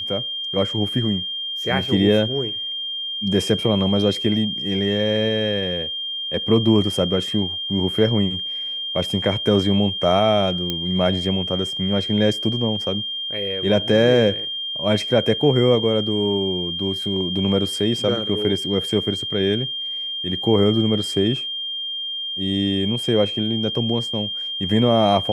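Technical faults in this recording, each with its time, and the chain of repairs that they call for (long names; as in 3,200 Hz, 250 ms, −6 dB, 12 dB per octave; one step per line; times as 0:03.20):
whistle 3,200 Hz −25 dBFS
0:10.70: click −9 dBFS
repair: click removal
notch filter 3,200 Hz, Q 30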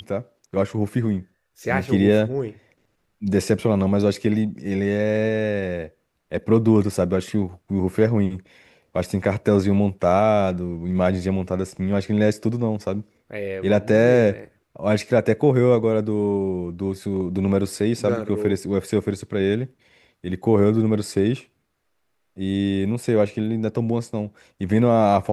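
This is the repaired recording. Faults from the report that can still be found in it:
none of them is left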